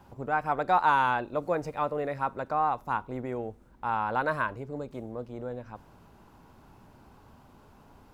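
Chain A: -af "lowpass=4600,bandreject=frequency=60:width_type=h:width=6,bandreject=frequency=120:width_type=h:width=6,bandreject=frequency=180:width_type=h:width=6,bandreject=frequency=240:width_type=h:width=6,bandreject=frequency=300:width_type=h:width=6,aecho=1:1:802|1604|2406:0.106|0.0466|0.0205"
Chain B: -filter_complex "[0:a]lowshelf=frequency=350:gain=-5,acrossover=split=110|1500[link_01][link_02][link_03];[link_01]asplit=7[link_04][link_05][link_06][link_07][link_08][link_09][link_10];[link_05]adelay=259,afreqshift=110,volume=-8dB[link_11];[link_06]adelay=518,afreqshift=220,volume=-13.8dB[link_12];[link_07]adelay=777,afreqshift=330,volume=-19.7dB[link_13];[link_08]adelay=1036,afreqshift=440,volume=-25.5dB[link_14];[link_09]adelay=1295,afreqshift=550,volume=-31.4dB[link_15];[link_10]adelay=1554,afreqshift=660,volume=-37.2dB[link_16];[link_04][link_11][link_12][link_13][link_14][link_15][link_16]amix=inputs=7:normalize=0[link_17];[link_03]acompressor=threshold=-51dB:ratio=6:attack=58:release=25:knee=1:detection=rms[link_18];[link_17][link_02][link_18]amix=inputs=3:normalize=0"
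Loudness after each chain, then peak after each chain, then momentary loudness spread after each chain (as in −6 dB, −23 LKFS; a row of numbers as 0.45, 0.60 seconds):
−30.0, −31.5 LKFS; −12.0, −14.0 dBFS; 15, 15 LU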